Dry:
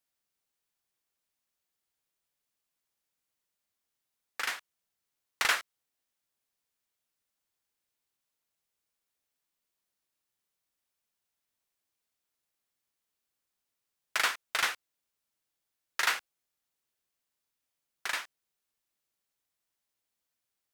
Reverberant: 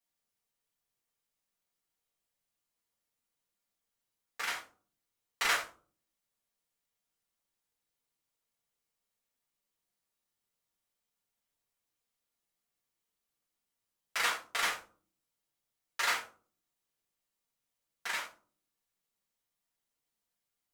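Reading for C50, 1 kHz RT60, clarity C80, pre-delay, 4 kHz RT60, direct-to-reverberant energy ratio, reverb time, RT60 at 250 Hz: 9.0 dB, 0.35 s, 14.5 dB, 4 ms, 0.25 s, -6.0 dB, 0.40 s, 0.70 s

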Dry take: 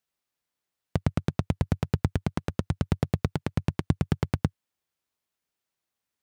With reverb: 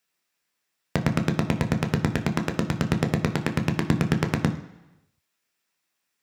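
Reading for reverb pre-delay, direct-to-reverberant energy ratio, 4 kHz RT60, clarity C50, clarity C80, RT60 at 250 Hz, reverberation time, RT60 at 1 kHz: 11 ms, 5.0 dB, 0.95 s, 12.0 dB, 14.5 dB, 0.90 s, 1.0 s, 1.0 s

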